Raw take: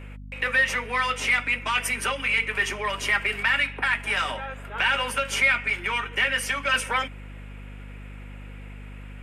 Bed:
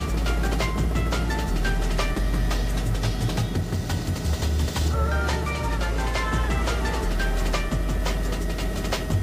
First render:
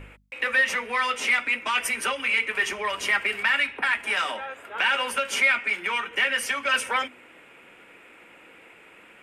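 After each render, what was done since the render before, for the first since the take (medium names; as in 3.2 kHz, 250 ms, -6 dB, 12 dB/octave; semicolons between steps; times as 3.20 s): de-hum 50 Hz, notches 5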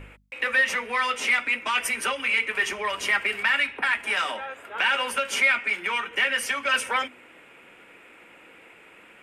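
no audible change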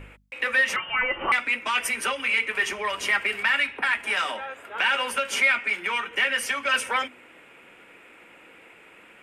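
0.76–1.32 s: frequency inversion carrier 3.3 kHz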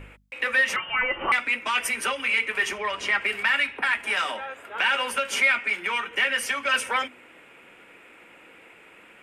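2.78–3.24 s: distance through air 62 m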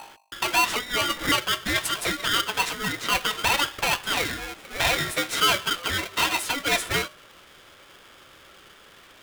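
polarity switched at an audio rate 860 Hz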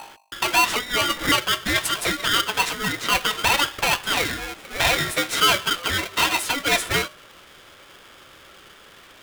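trim +3 dB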